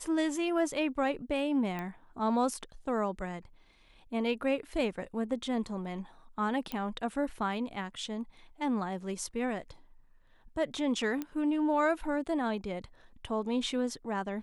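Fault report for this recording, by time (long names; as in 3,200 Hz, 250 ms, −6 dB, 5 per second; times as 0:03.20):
0:01.79: click −24 dBFS
0:06.72: click −20 dBFS
0:11.22: click −22 dBFS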